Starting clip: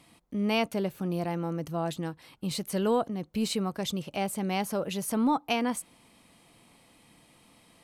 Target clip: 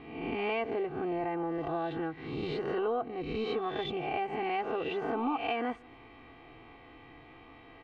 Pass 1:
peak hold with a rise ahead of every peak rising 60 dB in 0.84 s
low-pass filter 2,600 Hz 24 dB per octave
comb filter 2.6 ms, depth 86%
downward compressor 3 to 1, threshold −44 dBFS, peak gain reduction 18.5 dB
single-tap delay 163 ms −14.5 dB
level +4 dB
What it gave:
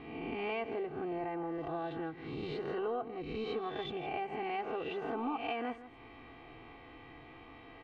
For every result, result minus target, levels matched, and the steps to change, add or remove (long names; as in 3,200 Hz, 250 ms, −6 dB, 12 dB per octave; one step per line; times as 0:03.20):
echo-to-direct +11 dB; downward compressor: peak gain reduction +4.5 dB
change: single-tap delay 163 ms −25.5 dB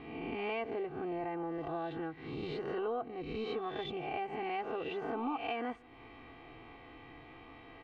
downward compressor: peak gain reduction +4.5 dB
change: downward compressor 3 to 1, threshold −37 dBFS, peak gain reduction 13.5 dB